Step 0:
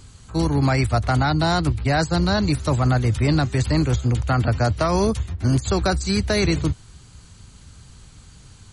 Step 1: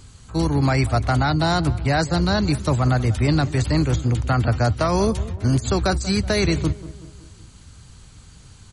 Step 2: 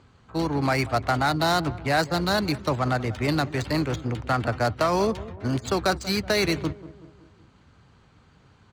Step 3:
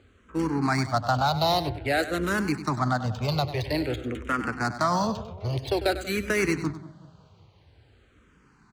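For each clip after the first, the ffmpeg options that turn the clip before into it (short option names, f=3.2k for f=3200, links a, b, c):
-filter_complex "[0:a]asplit=2[a][b];[b]adelay=187,lowpass=f=1.4k:p=1,volume=-16dB,asplit=2[c][d];[d]adelay=187,lowpass=f=1.4k:p=1,volume=0.53,asplit=2[e][f];[f]adelay=187,lowpass=f=1.4k:p=1,volume=0.53,asplit=2[g][h];[h]adelay=187,lowpass=f=1.4k:p=1,volume=0.53,asplit=2[i][j];[j]adelay=187,lowpass=f=1.4k:p=1,volume=0.53[k];[a][c][e][g][i][k]amix=inputs=6:normalize=0"
-af "highpass=f=350:p=1,adynamicsmooth=sensitivity=5:basefreq=1.9k"
-filter_complex "[0:a]aecho=1:1:98:0.237,asplit=2[a][b];[b]afreqshift=-0.5[c];[a][c]amix=inputs=2:normalize=1,volume=1dB"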